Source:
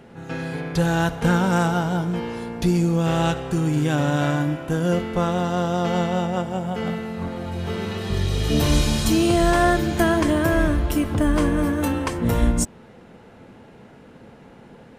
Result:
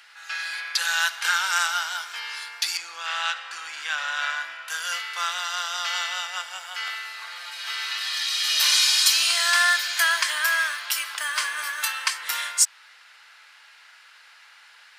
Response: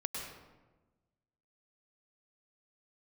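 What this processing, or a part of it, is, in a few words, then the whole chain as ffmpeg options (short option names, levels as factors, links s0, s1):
headphones lying on a table: -filter_complex "[0:a]highpass=f=1400:w=0.5412,highpass=f=1400:w=1.3066,equalizer=f=4700:t=o:w=0.52:g=7.5,asettb=1/sr,asplit=3[s0][s1][s2];[s0]atrim=end=2.774[s3];[s1]atrim=start=2.77:end=4.68,asetpts=PTS-STARTPTS,afade=t=in:d=0.004:c=qsin,afade=t=out:st=1.906:d=0.004:c=qsin,aemphasis=mode=reproduction:type=75fm[s4];[s2]atrim=start=4.676[s5];[s3][s4]acrossfade=d=0.004:c1=hsin:c2=qsin[s6];[s6][s5]acrossfade=d=0.004:c1=qsin:c2=hsin,volume=2.24"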